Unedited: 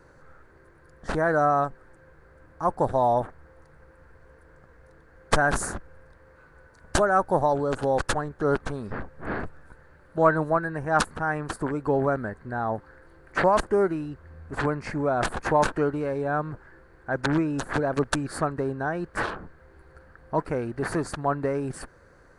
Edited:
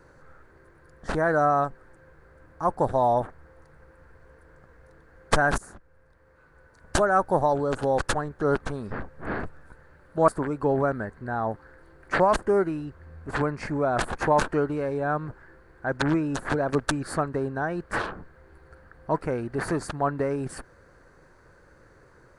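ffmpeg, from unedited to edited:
ffmpeg -i in.wav -filter_complex "[0:a]asplit=3[link_01][link_02][link_03];[link_01]atrim=end=5.58,asetpts=PTS-STARTPTS,afade=type=out:start_time=5.576:duration=0.004:curve=hsin:silence=0.11885[link_04];[link_02]atrim=start=5.58:end=10.282,asetpts=PTS-STARTPTS,afade=type=in:duration=1.5:silence=0.11885[link_05];[link_03]atrim=start=11.518[link_06];[link_04][link_05]concat=n=2:v=0:a=1[link_07];[link_07][link_06]acrossfade=duration=0.004:curve1=hsin:curve2=hsin" out.wav

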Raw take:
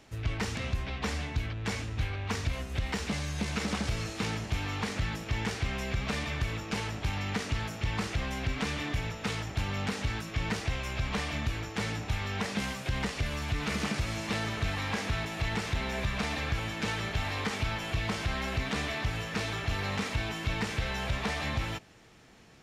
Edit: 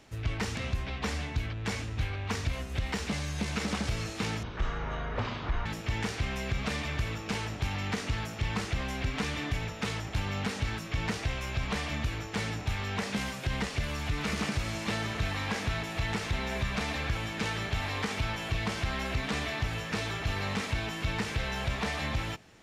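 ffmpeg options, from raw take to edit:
ffmpeg -i in.wav -filter_complex "[0:a]asplit=3[link_01][link_02][link_03];[link_01]atrim=end=4.434[link_04];[link_02]atrim=start=4.43:end=5.08,asetpts=PTS-STARTPTS,asetrate=23373,aresample=44100[link_05];[link_03]atrim=start=5.076[link_06];[link_04][link_05]acrossfade=duration=0.004:curve1=hsin:curve2=hsin[link_07];[link_07][link_06]acrossfade=duration=0.004:curve1=hsin:curve2=hsin" out.wav

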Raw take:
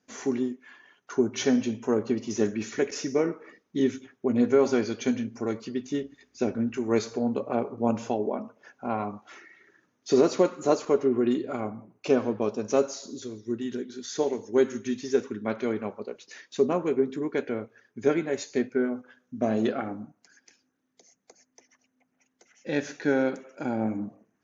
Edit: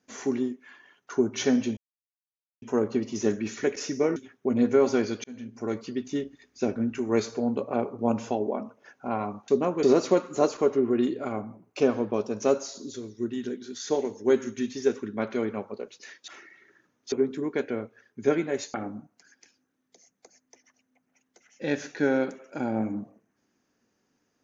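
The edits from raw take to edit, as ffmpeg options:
ffmpeg -i in.wav -filter_complex "[0:a]asplit=9[link_01][link_02][link_03][link_04][link_05][link_06][link_07][link_08][link_09];[link_01]atrim=end=1.77,asetpts=PTS-STARTPTS,afade=type=out:start_time=1.766:duration=0.004:curve=hsin,apad=pad_dur=0.85[link_10];[link_02]atrim=start=1.77:end=3.312,asetpts=PTS-STARTPTS,afade=type=in:duration=0.004:curve=hsin[link_11];[link_03]atrim=start=3.948:end=5.03,asetpts=PTS-STARTPTS,afade=type=out:start_time=1.078:duration=0.004:curve=hsin[link_12];[link_04]atrim=start=5.03:end=9.272,asetpts=PTS-STARTPTS,afade=type=in:duration=0.49[link_13];[link_05]atrim=start=16.558:end=16.912[link_14];[link_06]atrim=start=10.108:end=16.562[link_15];[link_07]atrim=start=9.268:end=10.112[link_16];[link_08]atrim=start=16.908:end=18.532[link_17];[link_09]atrim=start=19.788[link_18];[link_10][link_11]concat=n=2:v=0:a=1[link_19];[link_12][link_13]concat=n=2:v=0:a=1[link_20];[link_19][link_20]acrossfade=duration=0.004:curve1=hsin:curve2=hsin[link_21];[link_21][link_14]acrossfade=duration=0.004:curve1=hsin:curve2=hsin[link_22];[link_22][link_15]acrossfade=duration=0.004:curve1=hsin:curve2=hsin[link_23];[link_23][link_16]acrossfade=duration=0.004:curve1=hsin:curve2=hsin[link_24];[link_24][link_17]acrossfade=duration=0.004:curve1=hsin:curve2=hsin[link_25];[link_25][link_18]acrossfade=duration=0.004:curve1=hsin:curve2=hsin" out.wav

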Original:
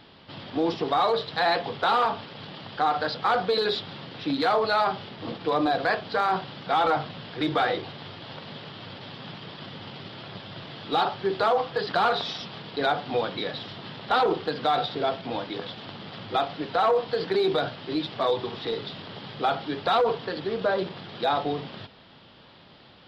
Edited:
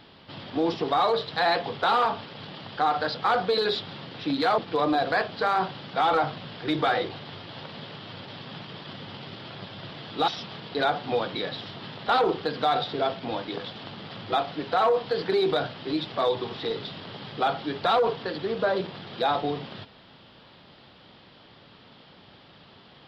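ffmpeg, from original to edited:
ffmpeg -i in.wav -filter_complex "[0:a]asplit=3[link_01][link_02][link_03];[link_01]atrim=end=4.582[link_04];[link_02]atrim=start=5.308:end=11.012[link_05];[link_03]atrim=start=12.298[link_06];[link_04][link_05]acrossfade=duration=0.004:curve1=hsin:curve2=hsin[link_07];[link_07][link_06]acrossfade=duration=0.004:curve1=hsin:curve2=hsin" out.wav

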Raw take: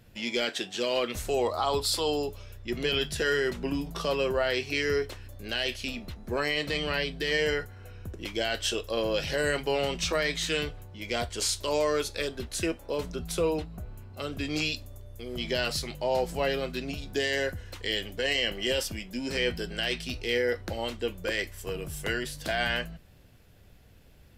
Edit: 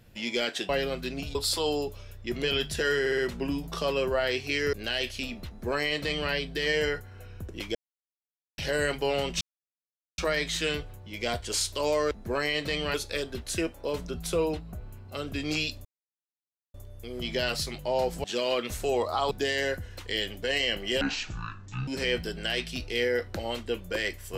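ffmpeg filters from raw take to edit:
ffmpeg -i in.wav -filter_complex "[0:a]asplit=17[link_01][link_02][link_03][link_04][link_05][link_06][link_07][link_08][link_09][link_10][link_11][link_12][link_13][link_14][link_15][link_16][link_17];[link_01]atrim=end=0.692[link_18];[link_02]atrim=start=16.398:end=17.062[link_19];[link_03]atrim=start=1.758:end=3.472[link_20];[link_04]atrim=start=3.408:end=3.472[link_21];[link_05]atrim=start=3.408:end=3.472[link_22];[link_06]atrim=start=3.408:end=4.962[link_23];[link_07]atrim=start=5.378:end=8.4,asetpts=PTS-STARTPTS,afade=type=out:start_time=3.018:duration=0.004:curve=hsin[link_24];[link_08]atrim=start=8.4:end=9.23,asetpts=PTS-STARTPTS,volume=0[link_25];[link_09]atrim=start=9.23:end=10.06,asetpts=PTS-STARTPTS,afade=type=in:duration=0.004:curve=hsin,afade=type=out:start_time=0.826:duration=0.004:curve=hsin,apad=pad_dur=0.77[link_26];[link_10]atrim=start=10.06:end=11.992,asetpts=PTS-STARTPTS,afade=type=in:duration=0.004:curve=hsin[link_27];[link_11]atrim=start=6.128:end=6.962[link_28];[link_12]atrim=start=11.988:end=14.9,asetpts=PTS-STARTPTS,afade=type=out:start_time=2.908:duration=0.004:curve=hsin,apad=pad_dur=0.89[link_29];[link_13]atrim=start=14.9:end=16.402,asetpts=PTS-STARTPTS,afade=type=in:duration=0.004:curve=hsin[link_30];[link_14]atrim=start=0.688:end=1.762[link_31];[link_15]atrim=start=17.058:end=18.764[link_32];[link_16]atrim=start=18.76:end=19.21,asetpts=PTS-STARTPTS,asetrate=22932,aresample=44100,atrim=end_sample=38163,asetpts=PTS-STARTPTS[link_33];[link_17]atrim=start=19.206[link_34];[link_18][link_19]acrossfade=duration=0.004:curve1=hsin:curve2=hsin[link_35];[link_35][link_20]acrossfade=duration=0.004:curve1=hsin:curve2=hsin[link_36];[link_36][link_21]acrossfade=duration=0.004:curve1=hsin:curve2=hsin[link_37];[link_37][link_22]acrossfade=duration=0.004:curve1=hsin:curve2=hsin[link_38];[link_38][link_23]acrossfade=duration=0.004:curve1=hsin:curve2=hsin[link_39];[link_24][link_25][link_26][link_27]concat=n=4:v=0:a=1[link_40];[link_39][link_40]acrossfade=duration=0.004:curve1=hsin:curve2=hsin[link_41];[link_41][link_28]acrossfade=duration=0.004:curve1=hsin:curve2=hsin[link_42];[link_29][link_30]concat=n=2:v=0:a=1[link_43];[link_42][link_43]acrossfade=duration=0.004:curve1=hsin:curve2=hsin[link_44];[link_44][link_31]acrossfade=duration=0.004:curve1=hsin:curve2=hsin[link_45];[link_45][link_32]acrossfade=duration=0.004:curve1=hsin:curve2=hsin[link_46];[link_46][link_33]acrossfade=duration=0.004:curve1=hsin:curve2=hsin[link_47];[link_47][link_34]acrossfade=duration=0.004:curve1=hsin:curve2=hsin" out.wav

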